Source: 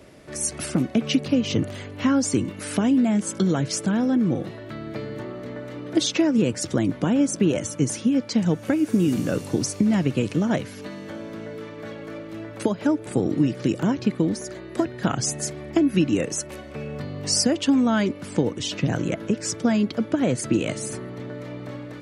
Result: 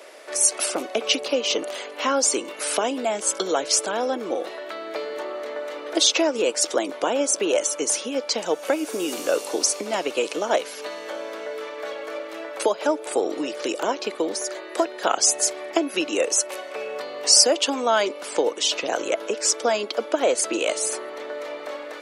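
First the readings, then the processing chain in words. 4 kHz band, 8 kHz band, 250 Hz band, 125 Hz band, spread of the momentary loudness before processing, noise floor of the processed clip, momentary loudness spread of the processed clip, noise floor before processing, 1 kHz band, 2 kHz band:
+7.5 dB, +8.0 dB, -10.0 dB, under -25 dB, 15 LU, -37 dBFS, 14 LU, -39 dBFS, +7.0 dB, +4.0 dB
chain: dynamic bell 1.8 kHz, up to -7 dB, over -48 dBFS, Q 2.1; high-pass 470 Hz 24 dB/octave; trim +8 dB

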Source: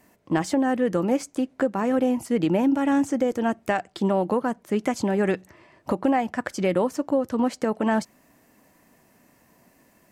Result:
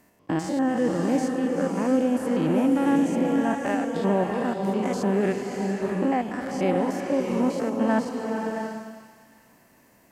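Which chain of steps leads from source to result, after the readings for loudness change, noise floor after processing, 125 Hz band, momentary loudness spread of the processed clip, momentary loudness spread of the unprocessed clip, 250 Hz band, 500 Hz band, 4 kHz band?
-0.5 dB, -58 dBFS, +1.5 dB, 7 LU, 5 LU, +0.5 dB, -0.5 dB, -1.0 dB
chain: spectrogram pixelated in time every 100 ms; feedback echo behind a high-pass 378 ms, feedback 48%, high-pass 1.7 kHz, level -13 dB; swelling reverb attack 670 ms, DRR 2 dB

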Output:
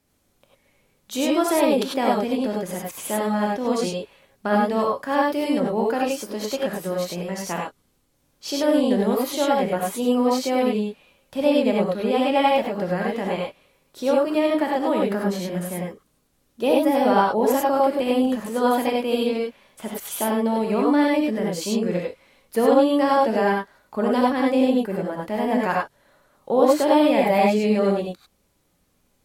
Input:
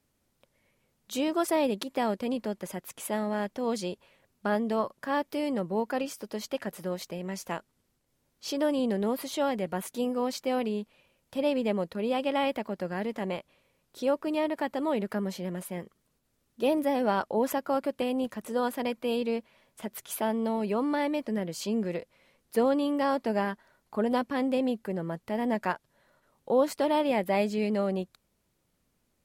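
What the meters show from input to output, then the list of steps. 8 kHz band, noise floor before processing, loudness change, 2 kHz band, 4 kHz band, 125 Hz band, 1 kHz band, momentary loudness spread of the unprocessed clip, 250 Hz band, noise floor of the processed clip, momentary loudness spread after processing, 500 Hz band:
+8.5 dB, -75 dBFS, +8.5 dB, +8.0 dB, +8.0 dB, +7.5 dB, +9.5 dB, 10 LU, +8.0 dB, -67 dBFS, 11 LU, +8.5 dB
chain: gated-style reverb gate 120 ms rising, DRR -2 dB; trim +4 dB

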